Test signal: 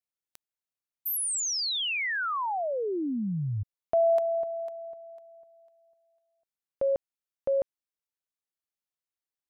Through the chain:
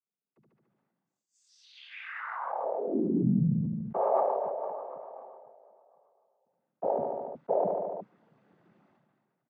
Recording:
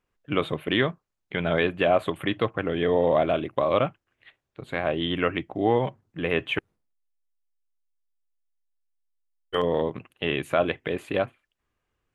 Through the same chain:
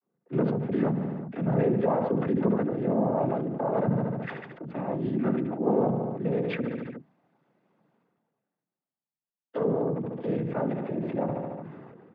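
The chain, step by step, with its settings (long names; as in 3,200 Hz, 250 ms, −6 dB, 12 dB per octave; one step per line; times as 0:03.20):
channel vocoder with a chord as carrier minor triad, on D3
low-pass filter 1,400 Hz 12 dB per octave
parametric band 290 Hz +5 dB 0.61 octaves
in parallel at −2 dB: downward compressor, threshold −35 dBFS
on the sum: cochlear-implant simulation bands 16
on a send: repeating echo 73 ms, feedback 50%, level −15 dB
on the sum: level that may fall only so fast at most 31 dB per second
level −4.5 dB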